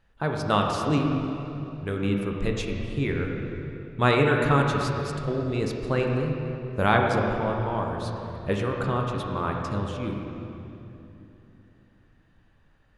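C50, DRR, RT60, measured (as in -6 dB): 2.0 dB, 0.5 dB, 3.0 s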